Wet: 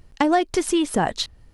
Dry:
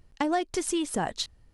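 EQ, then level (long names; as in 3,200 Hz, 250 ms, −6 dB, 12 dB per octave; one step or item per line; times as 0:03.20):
dynamic equaliser 7,800 Hz, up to −6 dB, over −45 dBFS, Q 0.8
+8.0 dB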